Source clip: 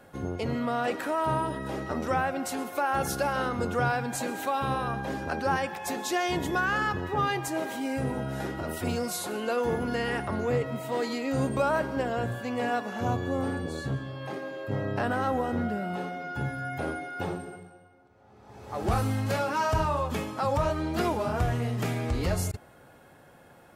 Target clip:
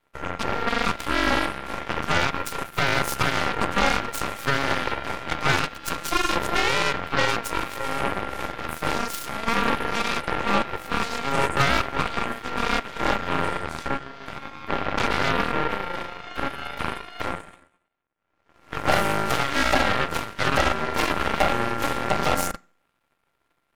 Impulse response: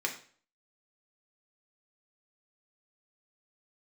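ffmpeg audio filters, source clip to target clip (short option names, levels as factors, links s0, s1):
-filter_complex "[0:a]aeval=exprs='val(0)*sin(2*PI*690*n/s)':c=same,aeval=exprs='0.188*(cos(1*acos(clip(val(0)/0.188,-1,1)))-cos(1*PI/2))+0.0266*(cos(7*acos(clip(val(0)/0.188,-1,1)))-cos(7*PI/2))+0.0335*(cos(8*acos(clip(val(0)/0.188,-1,1)))-cos(8*PI/2))':c=same,asplit=2[s0][s1];[1:a]atrim=start_sample=2205[s2];[s1][s2]afir=irnorm=-1:irlink=0,volume=0.0944[s3];[s0][s3]amix=inputs=2:normalize=0,volume=2.11"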